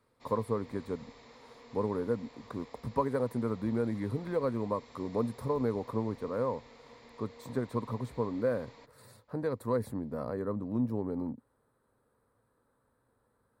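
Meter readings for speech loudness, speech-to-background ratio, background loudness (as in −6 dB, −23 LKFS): −34.5 LKFS, 20.0 dB, −54.5 LKFS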